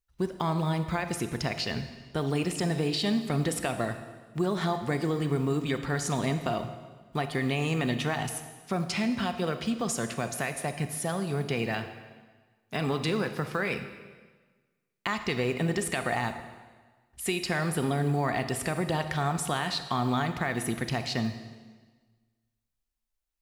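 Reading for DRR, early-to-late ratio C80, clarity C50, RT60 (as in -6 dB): 8.5 dB, 11.5 dB, 9.5 dB, 1.4 s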